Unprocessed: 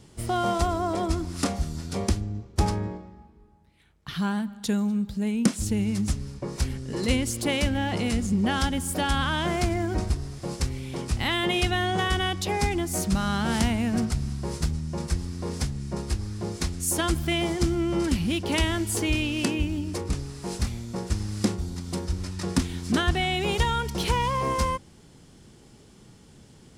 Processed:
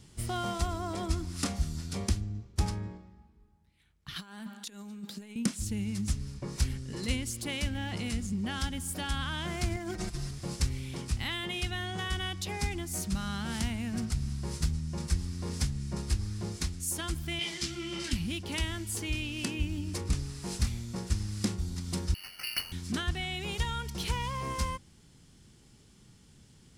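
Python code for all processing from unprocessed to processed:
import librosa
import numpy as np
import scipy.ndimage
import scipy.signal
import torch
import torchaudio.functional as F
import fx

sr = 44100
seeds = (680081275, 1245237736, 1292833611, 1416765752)

y = fx.chain(x, sr, fx.highpass(hz=260.0, slope=24),
    fx.over_compress(threshold_db=-37.0, ratio=-0.5), at=(4.16, 5.36))
y = fx.chain(y, sr, fx.low_shelf(hz=320.0, db=-5.5),
    fx.over_compress(threshold_db=-32.0, ratio=-0.5),
    fx.comb(ms=5.8, depth=0.83), at=(9.76, 10.31))
y = fx.chain(y, sr, fx.weighting(curve='D'),
    fx.detune_double(cents=36), at=(17.39, 18.13))
y = fx.chain(y, sr, fx.highpass(hz=310.0, slope=24),
    fx.freq_invert(carrier_hz=3200),
    fx.resample_bad(factor=6, down='none', up='hold'), at=(22.14, 22.72))
y = fx.peak_eq(y, sr, hz=550.0, db=-8.5, octaves=2.4)
y = fx.rider(y, sr, range_db=4, speed_s=0.5)
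y = y * librosa.db_to_amplitude(-4.0)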